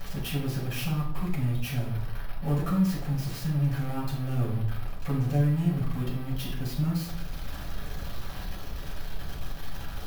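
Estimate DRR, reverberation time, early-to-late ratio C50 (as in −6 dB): −4.0 dB, 0.70 s, 5.5 dB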